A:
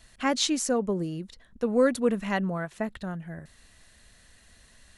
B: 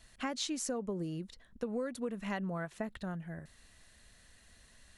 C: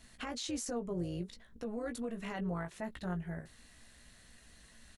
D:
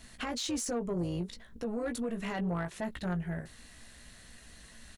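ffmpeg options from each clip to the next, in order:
ffmpeg -i in.wav -af "acompressor=threshold=-28dB:ratio=12,volume=-4.5dB" out.wav
ffmpeg -i in.wav -filter_complex "[0:a]alimiter=level_in=8.5dB:limit=-24dB:level=0:latency=1:release=26,volume=-8.5dB,tremolo=f=220:d=0.571,asplit=2[link_01][link_02];[link_02]adelay=17,volume=-7dB[link_03];[link_01][link_03]amix=inputs=2:normalize=0,volume=3.5dB" out.wav
ffmpeg -i in.wav -af "asoftclip=type=tanh:threshold=-32dB,volume=6dB" out.wav

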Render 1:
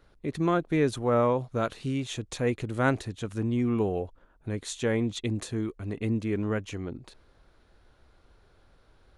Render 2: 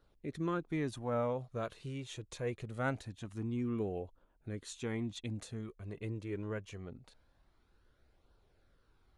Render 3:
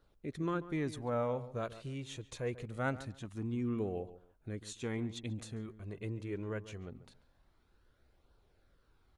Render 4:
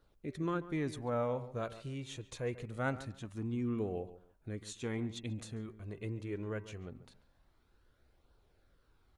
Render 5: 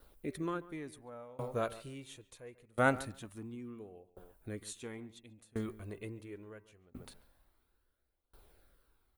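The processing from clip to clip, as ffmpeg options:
ffmpeg -i in.wav -af "flanger=delay=0.2:depth=2:regen=-47:speed=0.24:shape=triangular,volume=-6.5dB" out.wav
ffmpeg -i in.wav -filter_complex "[0:a]asplit=2[link_01][link_02];[link_02]adelay=140,lowpass=frequency=2000:poles=1,volume=-14.5dB,asplit=2[link_03][link_04];[link_04]adelay=140,lowpass=frequency=2000:poles=1,volume=0.23[link_05];[link_01][link_03][link_05]amix=inputs=3:normalize=0" out.wav
ffmpeg -i in.wav -af "bandreject=frequency=193.6:width_type=h:width=4,bandreject=frequency=387.2:width_type=h:width=4,bandreject=frequency=580.8:width_type=h:width=4,bandreject=frequency=774.4:width_type=h:width=4,bandreject=frequency=968:width_type=h:width=4,bandreject=frequency=1161.6:width_type=h:width=4,bandreject=frequency=1355.2:width_type=h:width=4,bandreject=frequency=1548.8:width_type=h:width=4,bandreject=frequency=1742.4:width_type=h:width=4,bandreject=frequency=1936:width_type=h:width=4,bandreject=frequency=2129.6:width_type=h:width=4,bandreject=frequency=2323.2:width_type=h:width=4,bandreject=frequency=2516.8:width_type=h:width=4,bandreject=frequency=2710.4:width_type=h:width=4" out.wav
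ffmpeg -i in.wav -af "equalizer=frequency=130:width=1:gain=-6.5,aexciter=amount=3.2:drive=6.5:freq=8700,aeval=exprs='val(0)*pow(10,-28*if(lt(mod(0.72*n/s,1),2*abs(0.72)/1000),1-mod(0.72*n/s,1)/(2*abs(0.72)/1000),(mod(0.72*n/s,1)-2*abs(0.72)/1000)/(1-2*abs(0.72)/1000))/20)':channel_layout=same,volume=9.5dB" out.wav

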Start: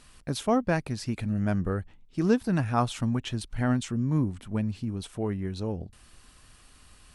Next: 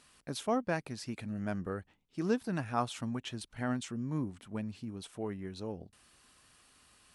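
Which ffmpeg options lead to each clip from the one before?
ffmpeg -i in.wav -af "highpass=frequency=230:poles=1,volume=-5.5dB" out.wav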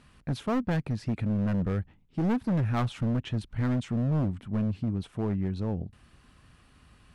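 ffmpeg -i in.wav -af "bass=frequency=250:gain=13,treble=frequency=4000:gain=-12,volume=27.5dB,asoftclip=hard,volume=-27.5dB,volume=4dB" out.wav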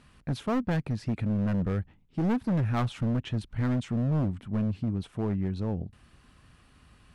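ffmpeg -i in.wav -af anull out.wav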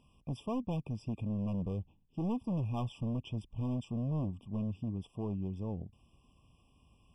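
ffmpeg -i in.wav -af "afftfilt=real='re*eq(mod(floor(b*sr/1024/1200),2),0)':imag='im*eq(mod(floor(b*sr/1024/1200),2),0)':win_size=1024:overlap=0.75,volume=-7.5dB" out.wav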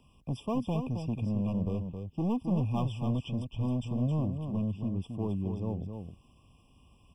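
ffmpeg -i in.wav -filter_complex "[0:a]acrossover=split=230|960|1100[link_01][link_02][link_03][link_04];[link_03]acrusher=bits=5:mode=log:mix=0:aa=0.000001[link_05];[link_01][link_02][link_05][link_04]amix=inputs=4:normalize=0,aecho=1:1:268:0.447,volume=4dB" out.wav

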